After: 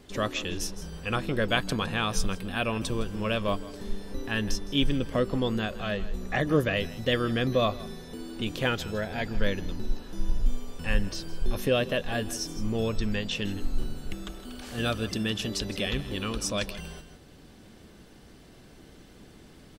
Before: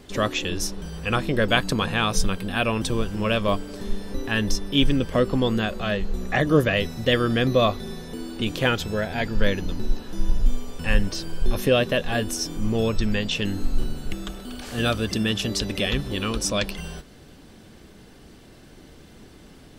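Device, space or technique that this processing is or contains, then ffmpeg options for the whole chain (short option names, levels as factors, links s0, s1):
ducked delay: -filter_complex "[0:a]asplit=3[s0][s1][s2];[s1]adelay=161,volume=0.708[s3];[s2]apad=whole_len=879462[s4];[s3][s4]sidechaincompress=threshold=0.02:ratio=8:attack=34:release=920[s5];[s0][s5]amix=inputs=2:normalize=0,volume=0.531"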